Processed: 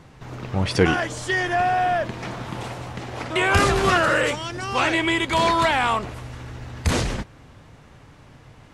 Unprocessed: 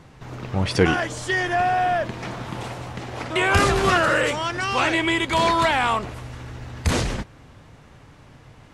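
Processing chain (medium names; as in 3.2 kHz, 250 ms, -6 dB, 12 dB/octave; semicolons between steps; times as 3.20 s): 4.34–4.74 s: peaking EQ 680 Hz -> 3.1 kHz -8 dB 2.3 oct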